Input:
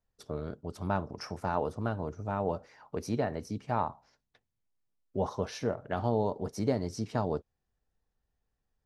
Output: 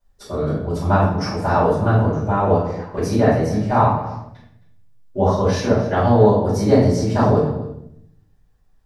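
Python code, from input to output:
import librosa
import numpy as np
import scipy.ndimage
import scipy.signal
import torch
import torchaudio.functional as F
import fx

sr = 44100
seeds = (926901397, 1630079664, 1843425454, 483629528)

y = x + 10.0 ** (-17.5 / 20.0) * np.pad(x, (int(266 * sr / 1000.0), 0))[:len(x)]
y = fx.room_shoebox(y, sr, seeds[0], volume_m3=160.0, walls='mixed', distance_m=4.9)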